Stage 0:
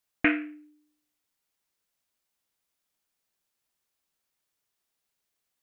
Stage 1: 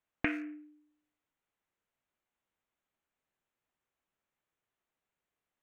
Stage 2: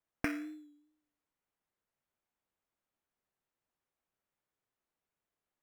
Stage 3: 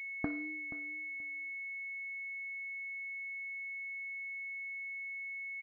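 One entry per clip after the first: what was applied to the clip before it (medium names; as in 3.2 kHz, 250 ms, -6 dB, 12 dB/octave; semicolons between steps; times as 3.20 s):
local Wiener filter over 9 samples; compression 6:1, threshold -29 dBFS, peak gain reduction 11 dB
in parallel at -7 dB: sample-rate reducer 3.7 kHz, jitter 0%; on the sum: vibrato 2.4 Hz 40 cents; trim -4.5 dB
feedback delay 479 ms, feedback 20%, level -13 dB; class-D stage that switches slowly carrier 2.2 kHz; trim -2 dB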